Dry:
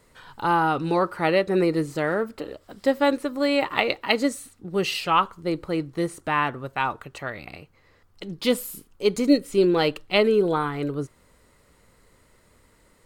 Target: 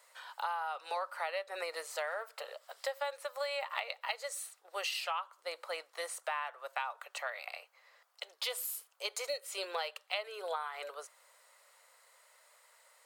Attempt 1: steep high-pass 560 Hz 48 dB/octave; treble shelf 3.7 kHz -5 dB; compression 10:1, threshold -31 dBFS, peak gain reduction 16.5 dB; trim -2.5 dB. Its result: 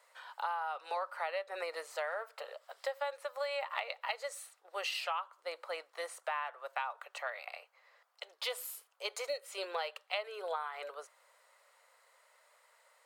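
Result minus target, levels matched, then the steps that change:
8 kHz band -5.0 dB
change: treble shelf 3.7 kHz +3 dB

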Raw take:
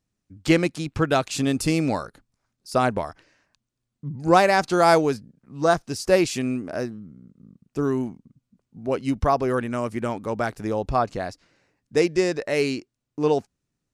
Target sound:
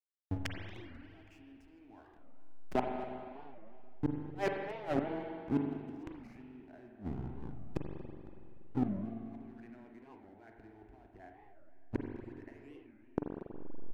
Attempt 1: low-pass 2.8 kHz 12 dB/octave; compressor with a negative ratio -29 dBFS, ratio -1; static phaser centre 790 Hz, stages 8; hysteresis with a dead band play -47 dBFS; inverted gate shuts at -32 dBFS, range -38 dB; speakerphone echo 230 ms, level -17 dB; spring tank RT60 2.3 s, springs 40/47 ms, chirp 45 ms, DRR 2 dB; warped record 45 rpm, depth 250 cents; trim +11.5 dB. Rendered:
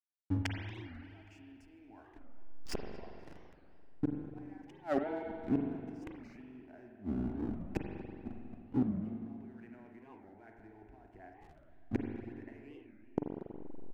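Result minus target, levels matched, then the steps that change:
hysteresis with a dead band: distortion -10 dB
change: hysteresis with a dead band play -36.5 dBFS

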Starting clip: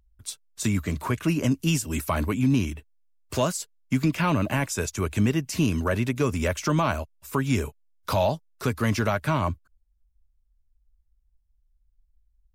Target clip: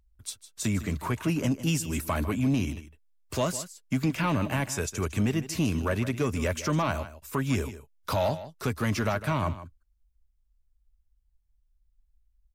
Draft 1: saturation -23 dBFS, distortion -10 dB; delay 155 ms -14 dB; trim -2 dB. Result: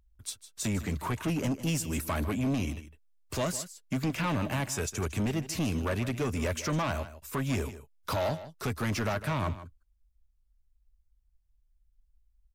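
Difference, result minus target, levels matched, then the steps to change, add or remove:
saturation: distortion +10 dB
change: saturation -15 dBFS, distortion -20 dB

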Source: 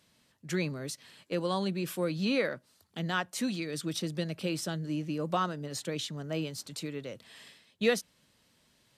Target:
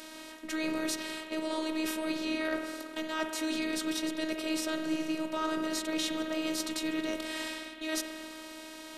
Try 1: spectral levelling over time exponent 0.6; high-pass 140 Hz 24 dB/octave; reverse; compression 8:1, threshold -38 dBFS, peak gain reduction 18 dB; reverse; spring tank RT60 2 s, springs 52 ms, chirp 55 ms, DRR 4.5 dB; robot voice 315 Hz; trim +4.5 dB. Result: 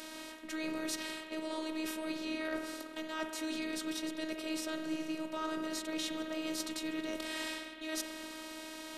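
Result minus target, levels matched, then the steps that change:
compression: peak gain reduction +5 dB
change: compression 8:1, threshold -32 dBFS, peak gain reduction 13 dB

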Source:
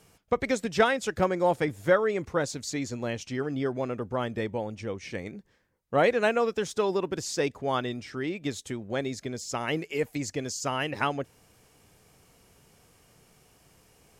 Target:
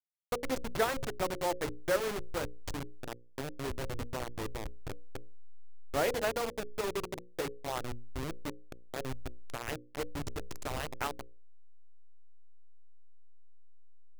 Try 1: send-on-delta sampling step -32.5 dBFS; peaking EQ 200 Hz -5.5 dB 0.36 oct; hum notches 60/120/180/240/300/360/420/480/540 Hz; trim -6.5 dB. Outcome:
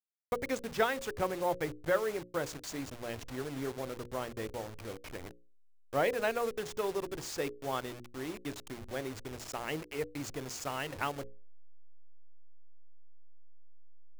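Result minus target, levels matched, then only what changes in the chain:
send-on-delta sampling: distortion -11 dB
change: send-on-delta sampling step -22 dBFS

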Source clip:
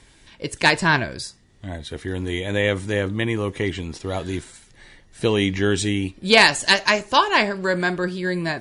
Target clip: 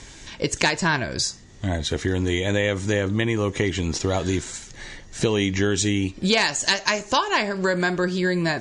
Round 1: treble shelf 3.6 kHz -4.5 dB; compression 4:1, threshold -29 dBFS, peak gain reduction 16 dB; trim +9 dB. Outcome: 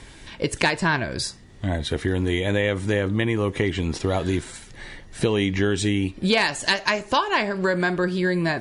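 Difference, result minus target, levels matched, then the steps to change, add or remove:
8 kHz band -6.5 dB
add first: resonant low-pass 6.7 kHz, resonance Q 3.7

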